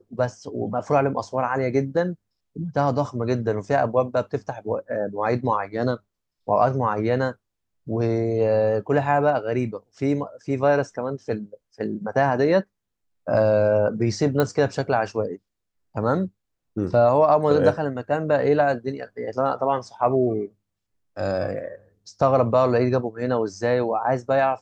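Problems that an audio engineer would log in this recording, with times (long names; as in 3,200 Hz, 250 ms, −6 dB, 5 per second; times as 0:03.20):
0:14.40: click −9 dBFS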